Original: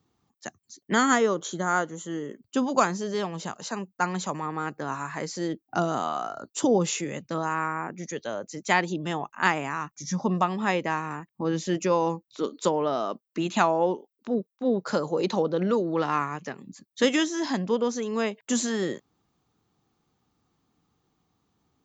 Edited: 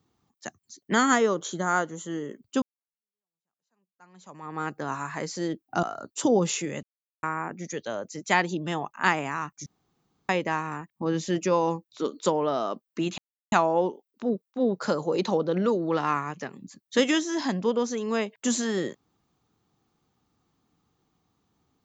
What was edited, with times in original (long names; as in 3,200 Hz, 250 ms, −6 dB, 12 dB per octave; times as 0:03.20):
0:02.62–0:04.61: fade in exponential
0:05.83–0:06.22: remove
0:07.22–0:07.62: silence
0:10.05–0:10.68: fill with room tone
0:13.57: splice in silence 0.34 s